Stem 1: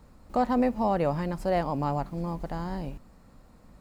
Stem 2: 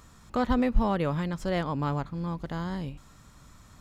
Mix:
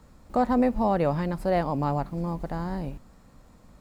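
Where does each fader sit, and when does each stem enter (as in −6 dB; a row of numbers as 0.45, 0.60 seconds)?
+0.5, −11.5 decibels; 0.00, 0.00 seconds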